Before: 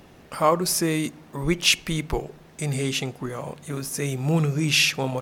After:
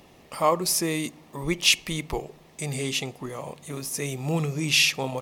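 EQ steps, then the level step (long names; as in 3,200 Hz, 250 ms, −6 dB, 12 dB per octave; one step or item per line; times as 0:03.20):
low-shelf EQ 400 Hz −6 dB
parametric band 1,500 Hz −12.5 dB 0.27 octaves
0.0 dB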